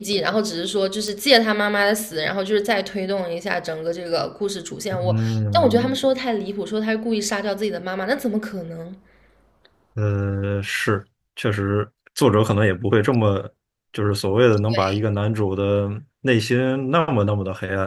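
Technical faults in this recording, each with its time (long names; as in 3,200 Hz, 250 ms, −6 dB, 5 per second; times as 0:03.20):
0:01.08: click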